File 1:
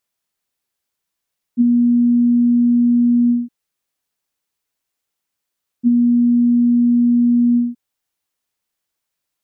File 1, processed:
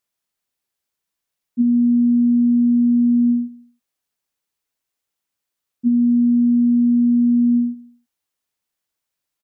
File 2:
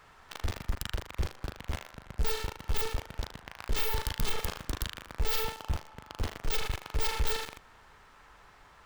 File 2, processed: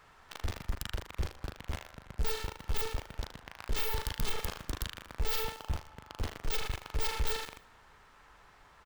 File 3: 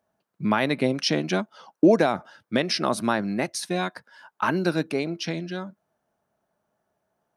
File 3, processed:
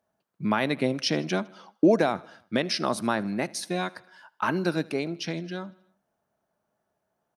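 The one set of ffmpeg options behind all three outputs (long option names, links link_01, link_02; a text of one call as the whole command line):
ffmpeg -i in.wav -af "aecho=1:1:79|158|237|316:0.0708|0.0411|0.0238|0.0138,volume=-2.5dB" out.wav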